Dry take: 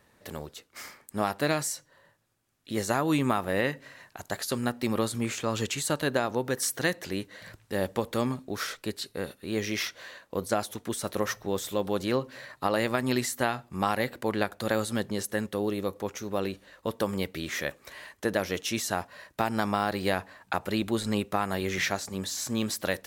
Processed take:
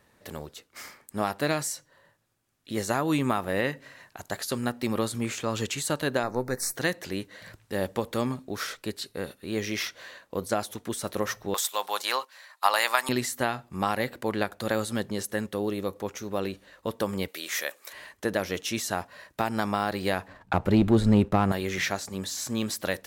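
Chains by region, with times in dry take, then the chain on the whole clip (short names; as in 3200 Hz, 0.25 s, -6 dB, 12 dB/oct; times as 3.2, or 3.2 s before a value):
6.23–6.76 half-wave gain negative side -3 dB + Butterworth band-stop 3100 Hz, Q 1.8 + doubler 16 ms -14 dB
11.54–13.09 gate -37 dBFS, range -12 dB + resonant high-pass 890 Hz, resonance Q 2.1 + high shelf 2300 Hz +12 dB
17.28–17.93 HPF 510 Hz + high shelf 5800 Hz +10.5 dB
20.28–21.52 tilt -3 dB/oct + sample leveller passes 1
whole clip: dry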